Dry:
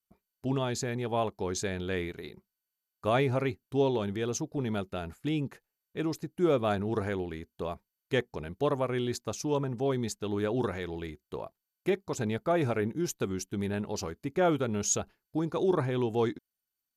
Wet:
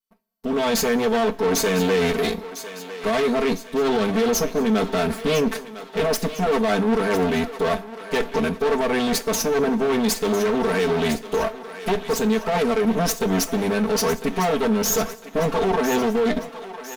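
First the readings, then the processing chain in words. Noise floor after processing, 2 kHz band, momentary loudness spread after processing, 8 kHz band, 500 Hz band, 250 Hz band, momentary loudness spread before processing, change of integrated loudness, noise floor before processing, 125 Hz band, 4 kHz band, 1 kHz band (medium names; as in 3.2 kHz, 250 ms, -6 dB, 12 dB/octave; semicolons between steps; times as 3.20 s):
-40 dBFS, +12.0 dB, 6 LU, +9.5 dB, +10.0 dB, +9.5 dB, 11 LU, +9.5 dB, under -85 dBFS, +3.0 dB, +13.0 dB, +11.0 dB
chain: comb filter that takes the minimum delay 4.6 ms; bass shelf 170 Hz -7 dB; comb 4.4 ms, depth 99%; reverse; compression, threshold -33 dBFS, peak gain reduction 14 dB; reverse; peak limiter -30 dBFS, peak gain reduction 7.5 dB; level rider gain up to 14 dB; waveshaping leveller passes 2; on a send: thinning echo 1003 ms, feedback 50%, high-pass 560 Hz, level -11.5 dB; on the sum: two-slope reverb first 0.23 s, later 1.5 s, from -18 dB, DRR 10 dB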